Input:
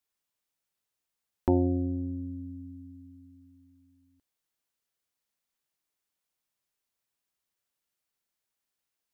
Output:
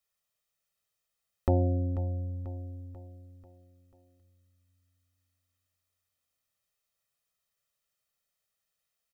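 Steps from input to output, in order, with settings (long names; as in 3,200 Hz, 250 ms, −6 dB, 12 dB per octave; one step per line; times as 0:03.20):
notch filter 740 Hz, Q 15
comb filter 1.6 ms, depth 67%
repeating echo 490 ms, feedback 50%, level −14 dB
on a send at −24 dB: convolution reverb RT60 0.75 s, pre-delay 4 ms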